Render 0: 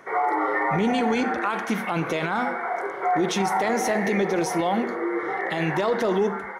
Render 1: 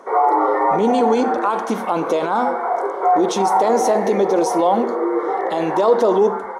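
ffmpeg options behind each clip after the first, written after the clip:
-af "equalizer=f=125:t=o:w=1:g=-10,equalizer=f=250:t=o:w=1:g=7,equalizer=f=500:t=o:w=1:g=10,equalizer=f=1k:t=o:w=1:g=11,equalizer=f=2k:t=o:w=1:g=-8,equalizer=f=4k:t=o:w=1:g=4,equalizer=f=8k:t=o:w=1:g=7,volume=-2.5dB"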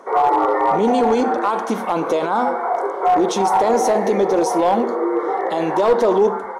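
-af "aeval=exprs='clip(val(0),-1,0.299)':c=same"

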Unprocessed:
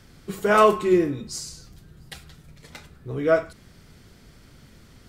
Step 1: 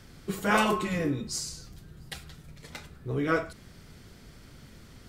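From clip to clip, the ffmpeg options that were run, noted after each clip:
-af "afftfilt=real='re*lt(hypot(re,im),0.631)':imag='im*lt(hypot(re,im),0.631)':win_size=1024:overlap=0.75"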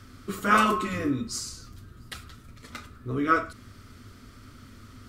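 -af "equalizer=f=100:t=o:w=0.33:g=10,equalizer=f=160:t=o:w=0.33:g=-11,equalizer=f=250:t=o:w=0.33:g=9,equalizer=f=500:t=o:w=0.33:g=-3,equalizer=f=800:t=o:w=0.33:g=-8,equalizer=f=1.25k:t=o:w=0.33:g=12"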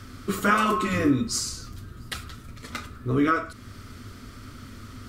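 -af "alimiter=limit=-17dB:level=0:latency=1:release=426,volume=6dB"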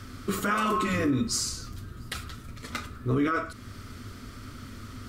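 -af "alimiter=limit=-18dB:level=0:latency=1:release=29"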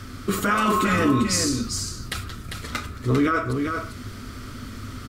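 -af "aecho=1:1:398:0.531,volume=5dB"

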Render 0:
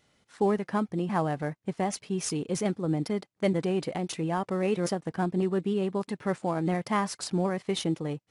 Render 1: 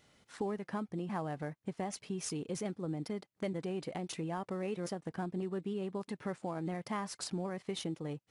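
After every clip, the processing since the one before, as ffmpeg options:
-af "acompressor=threshold=-41dB:ratio=2.5,volume=1dB"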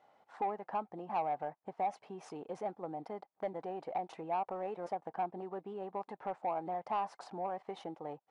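-af "bandpass=f=790:t=q:w=4:csg=0,asoftclip=type=tanh:threshold=-38dB,volume=12dB"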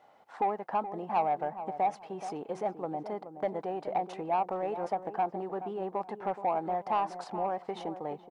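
-filter_complex "[0:a]asplit=2[a][b];[b]adelay=425,lowpass=f=990:p=1,volume=-10dB,asplit=2[c][d];[d]adelay=425,lowpass=f=990:p=1,volume=0.32,asplit=2[e][f];[f]adelay=425,lowpass=f=990:p=1,volume=0.32,asplit=2[g][h];[h]adelay=425,lowpass=f=990:p=1,volume=0.32[i];[a][c][e][g][i]amix=inputs=5:normalize=0,volume=6dB"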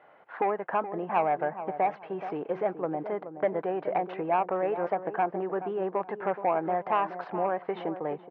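-af "highpass=130,equalizer=f=230:t=q:w=4:g=-8,equalizer=f=810:t=q:w=4:g=-7,equalizer=f=1.6k:t=q:w=4:g=5,lowpass=f=2.7k:w=0.5412,lowpass=f=2.7k:w=1.3066,volume=6.5dB"

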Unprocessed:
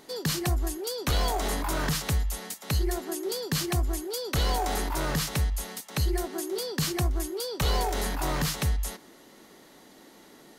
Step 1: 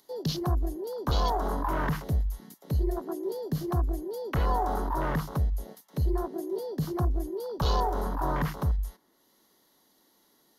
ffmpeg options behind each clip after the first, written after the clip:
-filter_complex "[0:a]afwtdn=0.0224,equalizer=f=1k:t=o:w=0.33:g=6,equalizer=f=2.5k:t=o:w=0.33:g=-9,equalizer=f=8k:t=o:w=0.33:g=-8,equalizer=f=12.5k:t=o:w=0.33:g=7,acrossover=split=210|2900[a][b][c];[c]acompressor=mode=upward:threshold=-59dB:ratio=2.5[d];[a][b][d]amix=inputs=3:normalize=0"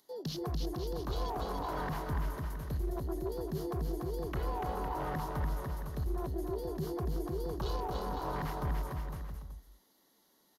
-filter_complex "[0:a]alimiter=limit=-22.5dB:level=0:latency=1:release=49,asoftclip=type=hard:threshold=-24.5dB,asplit=2[a][b];[b]aecho=0:1:290|507.5|670.6|793|884.7:0.631|0.398|0.251|0.158|0.1[c];[a][c]amix=inputs=2:normalize=0,volume=-6dB"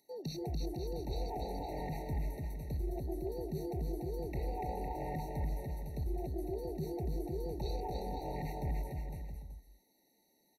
-af "afftfilt=real='re*eq(mod(floor(b*sr/1024/920),2),0)':imag='im*eq(mod(floor(b*sr/1024/920),2),0)':win_size=1024:overlap=0.75,volume=-2dB"

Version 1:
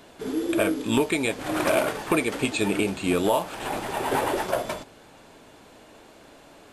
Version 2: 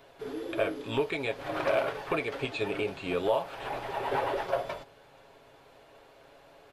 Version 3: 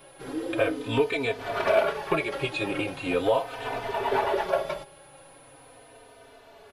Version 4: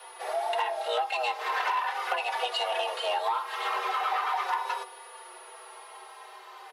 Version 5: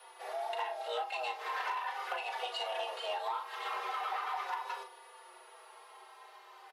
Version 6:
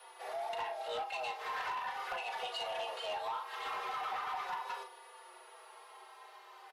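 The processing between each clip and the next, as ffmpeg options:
-filter_complex "[0:a]aecho=1:1:7.3:0.4,acrossover=split=6200[a][b];[b]acompressor=threshold=-51dB:ratio=4:attack=1:release=60[c];[a][c]amix=inputs=2:normalize=0,equalizer=f=250:t=o:w=1:g=-10,equalizer=f=500:t=o:w=1:g=4,equalizer=f=8k:t=o:w=1:g=-10,volume=-6dB"
-filter_complex "[0:a]aeval=exprs='val(0)+0.000708*sin(2*PI*10000*n/s)':c=same,asplit=2[a][b];[b]adelay=3.2,afreqshift=-0.4[c];[a][c]amix=inputs=2:normalize=1,volume=7.5dB"
-af "acompressor=threshold=-28dB:ratio=5,aeval=exprs='0.112*(cos(1*acos(clip(val(0)/0.112,-1,1)))-cos(1*PI/2))+0.01*(cos(5*acos(clip(val(0)/0.112,-1,1)))-cos(5*PI/2))':c=same,afreqshift=360,volume=1dB"
-filter_complex "[0:a]asplit=2[a][b];[b]adelay=38,volume=-8dB[c];[a][c]amix=inputs=2:normalize=0,volume=-8.5dB"
-af "asoftclip=type=tanh:threshold=-31.5dB"

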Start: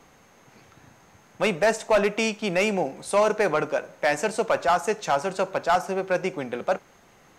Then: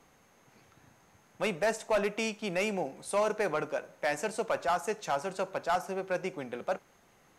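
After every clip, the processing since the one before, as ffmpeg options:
-af "equalizer=f=11k:w=1.9:g=6,volume=-8dB"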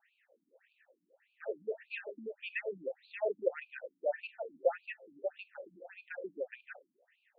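-filter_complex "[0:a]asplit=3[a][b][c];[a]bandpass=f=530:t=q:w=8,volume=0dB[d];[b]bandpass=f=1.84k:t=q:w=8,volume=-6dB[e];[c]bandpass=f=2.48k:t=q:w=8,volume=-9dB[f];[d][e][f]amix=inputs=3:normalize=0,afftfilt=real='re*between(b*sr/1024,220*pow(3400/220,0.5+0.5*sin(2*PI*1.7*pts/sr))/1.41,220*pow(3400/220,0.5+0.5*sin(2*PI*1.7*pts/sr))*1.41)':imag='im*between(b*sr/1024,220*pow(3400/220,0.5+0.5*sin(2*PI*1.7*pts/sr))/1.41,220*pow(3400/220,0.5+0.5*sin(2*PI*1.7*pts/sr))*1.41)':win_size=1024:overlap=0.75,volume=11dB"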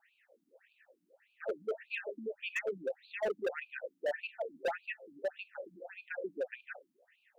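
-af "asoftclip=type=hard:threshold=-32dB,volume=3dB"

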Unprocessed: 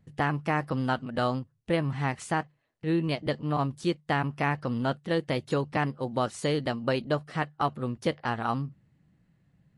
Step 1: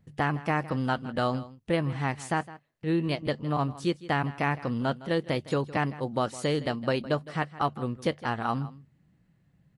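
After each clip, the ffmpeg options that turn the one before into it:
-af "aecho=1:1:161:0.133"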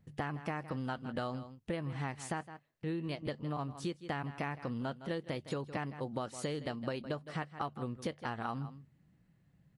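-af "acompressor=threshold=-31dB:ratio=6,volume=-3dB"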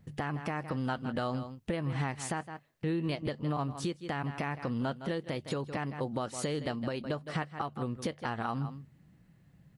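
-af "alimiter=level_in=5dB:limit=-24dB:level=0:latency=1:release=255,volume=-5dB,volume=7dB"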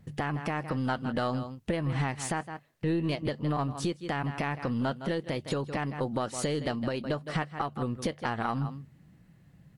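-af "aeval=exprs='0.0841*(cos(1*acos(clip(val(0)/0.0841,-1,1)))-cos(1*PI/2))+0.00944*(cos(2*acos(clip(val(0)/0.0841,-1,1)))-cos(2*PI/2))':c=same,volume=3.5dB" -ar 48000 -c:a libvorbis -b:a 192k

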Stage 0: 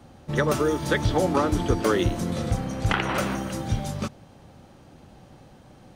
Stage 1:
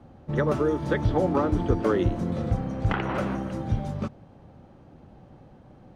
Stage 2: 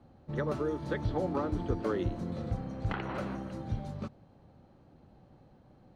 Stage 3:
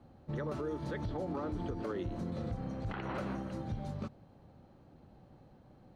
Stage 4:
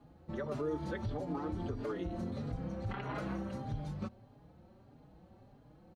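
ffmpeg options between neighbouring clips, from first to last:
-af "lowpass=f=1k:p=1"
-af "equalizer=f=4.2k:w=7.4:g=8,volume=-8.5dB"
-af "alimiter=level_in=5dB:limit=-24dB:level=0:latency=1:release=83,volume=-5dB"
-filter_complex "[0:a]asplit=2[a][b];[b]adelay=4.4,afreqshift=1.6[c];[a][c]amix=inputs=2:normalize=1,volume=2.5dB"

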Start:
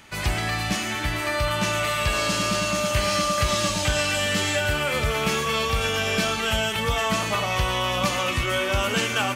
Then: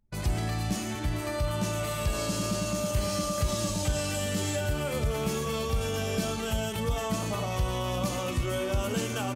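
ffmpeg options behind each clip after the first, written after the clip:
-filter_complex "[0:a]anlmdn=25.1,equalizer=f=2.1k:t=o:w=2.8:g=-14,asplit=2[a][b];[b]alimiter=limit=-22.5dB:level=0:latency=1,volume=2dB[c];[a][c]amix=inputs=2:normalize=0,volume=-6.5dB"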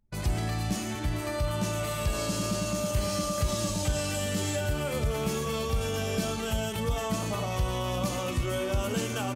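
-af anull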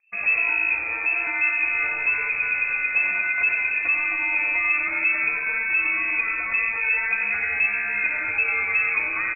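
-filter_complex "[0:a]afreqshift=23,asplit=2[a][b];[b]aecho=0:1:91:0.447[c];[a][c]amix=inputs=2:normalize=0,lowpass=f=2.3k:t=q:w=0.5098,lowpass=f=2.3k:t=q:w=0.6013,lowpass=f=2.3k:t=q:w=0.9,lowpass=f=2.3k:t=q:w=2.563,afreqshift=-2700,volume=5.5dB"

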